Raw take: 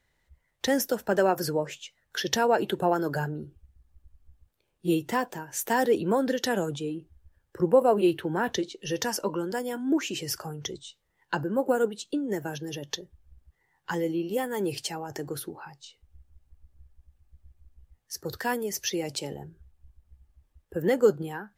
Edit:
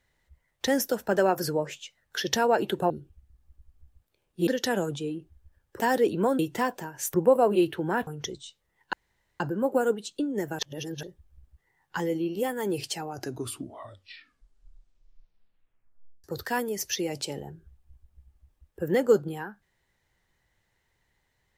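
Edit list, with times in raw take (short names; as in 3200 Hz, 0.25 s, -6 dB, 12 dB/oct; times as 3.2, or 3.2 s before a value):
2.9–3.36 cut
4.93–5.68 swap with 6.27–7.6
8.53–10.48 cut
11.34 insert room tone 0.47 s
12.53–12.97 reverse
14.88 tape stop 3.30 s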